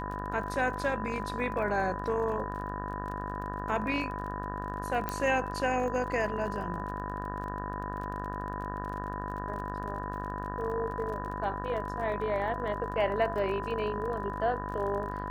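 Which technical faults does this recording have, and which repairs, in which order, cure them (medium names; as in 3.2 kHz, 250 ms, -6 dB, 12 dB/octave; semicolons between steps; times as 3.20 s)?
buzz 50 Hz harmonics 37 -38 dBFS
crackle 29 per s -39 dBFS
whine 1 kHz -38 dBFS
5.09 s: pop -16 dBFS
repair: de-click; band-stop 1 kHz, Q 30; de-hum 50 Hz, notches 37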